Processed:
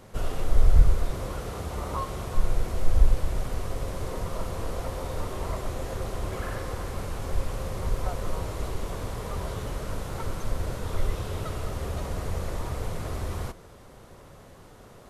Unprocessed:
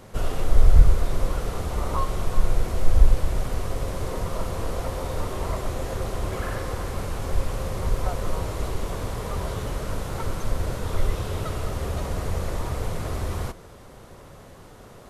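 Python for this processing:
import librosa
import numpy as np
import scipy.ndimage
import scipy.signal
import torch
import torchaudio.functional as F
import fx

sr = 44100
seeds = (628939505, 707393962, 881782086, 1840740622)

y = fx.highpass(x, sr, hz=51.0, slope=12, at=(1.11, 2.35))
y = y * librosa.db_to_amplitude(-3.5)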